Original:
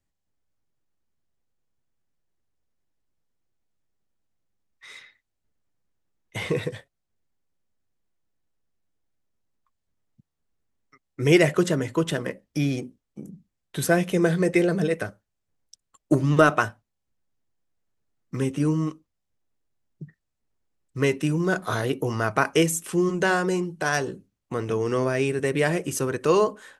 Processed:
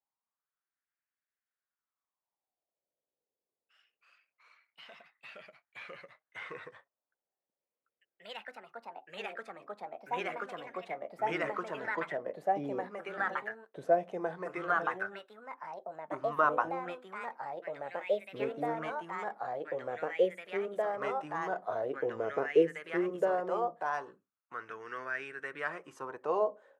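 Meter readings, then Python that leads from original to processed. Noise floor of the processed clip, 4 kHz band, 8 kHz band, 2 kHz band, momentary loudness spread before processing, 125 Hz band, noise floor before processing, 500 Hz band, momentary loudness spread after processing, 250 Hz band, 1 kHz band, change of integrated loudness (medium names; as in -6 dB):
under -85 dBFS, -15.0 dB, under -25 dB, -8.5 dB, 13 LU, -24.5 dB, -80 dBFS, -7.5 dB, 18 LU, -16.5 dB, -3.5 dB, -11.0 dB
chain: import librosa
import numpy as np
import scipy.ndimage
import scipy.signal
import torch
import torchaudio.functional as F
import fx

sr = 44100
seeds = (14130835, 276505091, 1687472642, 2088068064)

y = fx.wah_lfo(x, sr, hz=0.21, low_hz=450.0, high_hz=1600.0, q=4.1)
y = fx.echo_pitch(y, sr, ms=96, semitones=2, count=3, db_per_echo=-3.0)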